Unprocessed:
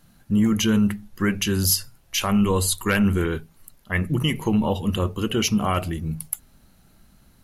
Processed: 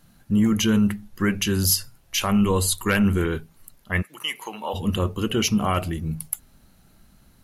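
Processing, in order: 4.01–4.73 HPF 1300 Hz -> 620 Hz 12 dB/oct

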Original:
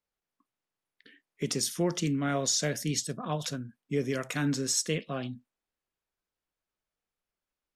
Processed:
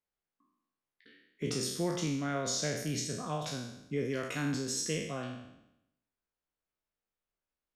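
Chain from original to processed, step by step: spectral trails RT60 0.84 s; high shelf 3900 Hz -6.5 dB; gain -5 dB

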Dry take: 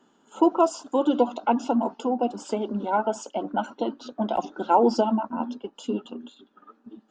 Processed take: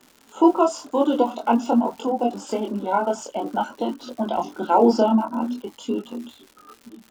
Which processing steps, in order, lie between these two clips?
crackle 95/s -36 dBFS; chorus voices 2, 0.49 Hz, delay 24 ms, depth 2.7 ms; gain +6 dB

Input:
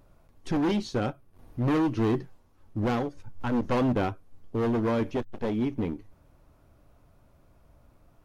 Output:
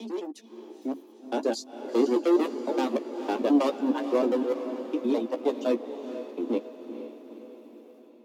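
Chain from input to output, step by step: slices in reverse order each 0.103 s, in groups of 8; steep high-pass 210 Hz 72 dB/oct; bell 1500 Hz -10 dB 1.4 oct; notches 50/100/150/200/250/300 Hz; AGC gain up to 14 dB; pitch shift +1.5 st; reverb removal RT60 1.8 s; doubler 14 ms -8 dB; on a send: diffused feedback echo 0.465 s, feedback 55%, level -10 dB; on the sum: gain -8.5 dB

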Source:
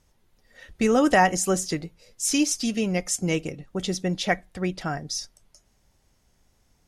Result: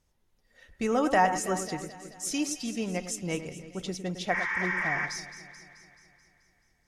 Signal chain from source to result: spectral repair 4.36–5.03, 860–6900 Hz before; echo with dull and thin repeats by turns 0.108 s, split 2300 Hz, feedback 78%, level -10 dB; dynamic EQ 970 Hz, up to +6 dB, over -35 dBFS, Q 0.96; gain -8.5 dB

